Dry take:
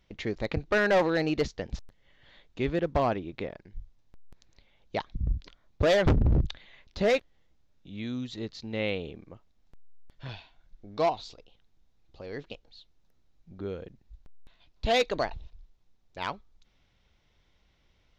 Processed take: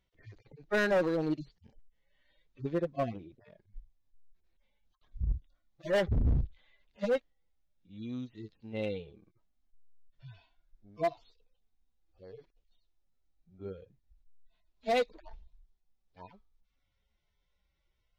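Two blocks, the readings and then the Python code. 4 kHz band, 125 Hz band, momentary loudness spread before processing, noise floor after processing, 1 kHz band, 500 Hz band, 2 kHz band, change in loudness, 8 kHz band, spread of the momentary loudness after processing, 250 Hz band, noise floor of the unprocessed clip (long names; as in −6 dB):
−10.5 dB, −6.0 dB, 22 LU, −78 dBFS, −7.5 dB, −5.5 dB, −6.5 dB, −4.0 dB, can't be measured, 19 LU, −5.5 dB, −68 dBFS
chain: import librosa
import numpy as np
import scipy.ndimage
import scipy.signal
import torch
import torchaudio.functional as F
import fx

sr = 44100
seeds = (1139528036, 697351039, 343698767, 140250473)

y = fx.hpss_only(x, sr, part='harmonic')
y = np.clip(10.0 ** (23.0 / 20.0) * y, -1.0, 1.0) / 10.0 ** (23.0 / 20.0)
y = fx.upward_expand(y, sr, threshold_db=-42.0, expansion=1.5)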